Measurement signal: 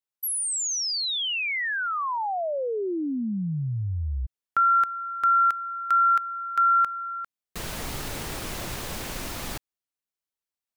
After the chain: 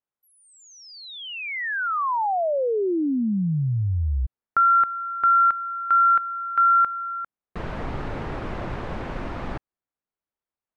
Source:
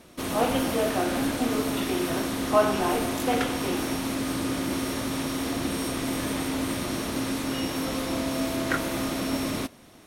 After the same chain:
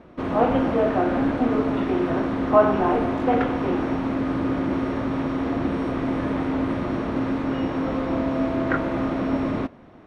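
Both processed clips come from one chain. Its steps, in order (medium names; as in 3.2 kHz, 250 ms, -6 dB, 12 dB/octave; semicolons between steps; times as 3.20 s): low-pass 1.5 kHz 12 dB/octave; trim +5 dB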